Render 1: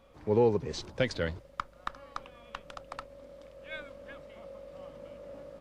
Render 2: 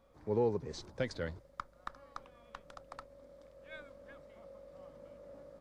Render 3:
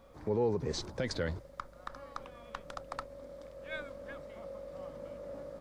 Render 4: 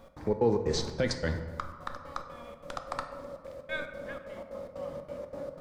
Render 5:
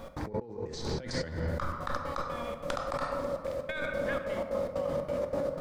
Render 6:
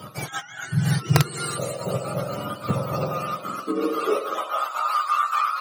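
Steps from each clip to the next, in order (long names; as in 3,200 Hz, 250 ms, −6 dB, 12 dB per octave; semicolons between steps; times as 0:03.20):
parametric band 2,800 Hz −7.5 dB 0.61 octaves; level −6.5 dB
brickwall limiter −31.5 dBFS, peak gain reduction 10 dB; level +8.5 dB
gate pattern "x.xx.xx.xx" 183 BPM −60 dB; on a send at −6 dB: convolution reverb RT60 1.6 s, pre-delay 4 ms; on the sum: level +5 dB
compressor whose output falls as the input rises −39 dBFS, ratio −1; level +5 dB
frequency axis turned over on the octave scale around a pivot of 830 Hz; high-pass filter sweep 130 Hz → 1,100 Hz, 0:03.04–0:05.03; wrap-around overflow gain 16 dB; level +8 dB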